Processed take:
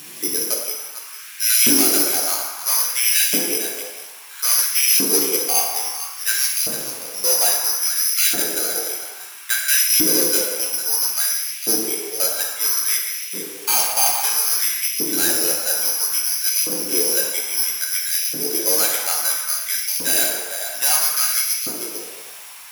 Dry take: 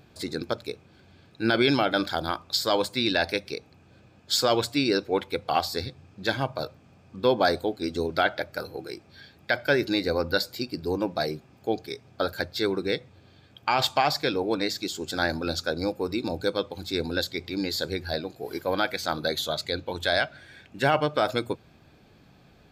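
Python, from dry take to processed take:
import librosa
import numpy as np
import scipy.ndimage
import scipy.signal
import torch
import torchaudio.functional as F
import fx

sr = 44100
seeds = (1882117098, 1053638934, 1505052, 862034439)

p1 = (np.kron(scipy.signal.resample_poly(x, 1, 8), np.eye(8)[0]) * 8)[:len(x)]
p2 = p1 + fx.echo_single(p1, sr, ms=449, db=-14.5, dry=0)
p3 = fx.dmg_noise_colour(p2, sr, seeds[0], colour='white', level_db=-43.0)
p4 = p3 * (1.0 - 0.37 / 2.0 + 0.37 / 2.0 * np.cos(2.0 * np.pi * 0.59 * (np.arange(len(p3)) / sr)))
p5 = 10.0 ** (-7.0 / 20.0) * np.tanh(p4 / 10.0 ** (-7.0 / 20.0))
p6 = fx.peak_eq(p5, sr, hz=11000.0, db=5.0, octaves=0.71)
p7 = fx.rev_plate(p6, sr, seeds[1], rt60_s=1.7, hf_ratio=0.55, predelay_ms=0, drr_db=-2.5)
p8 = fx.filter_lfo_highpass(p7, sr, shape='saw_up', hz=0.6, low_hz=240.0, high_hz=2500.0, q=2.1)
p9 = fx.graphic_eq_15(p8, sr, hz=(160, 630, 2500), db=(8, -6, 7))
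y = p9 * librosa.db_to_amplitude(-1.0)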